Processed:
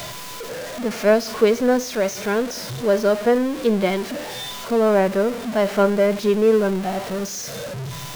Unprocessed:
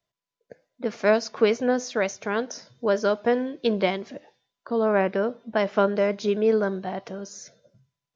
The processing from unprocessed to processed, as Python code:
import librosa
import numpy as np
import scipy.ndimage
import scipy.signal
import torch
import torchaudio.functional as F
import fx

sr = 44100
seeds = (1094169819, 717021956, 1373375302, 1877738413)

y = x + 0.5 * 10.0 ** (-26.0 / 20.0) * np.sign(x)
y = fx.hpss(y, sr, part='harmonic', gain_db=9)
y = y * 10.0 ** (-5.5 / 20.0)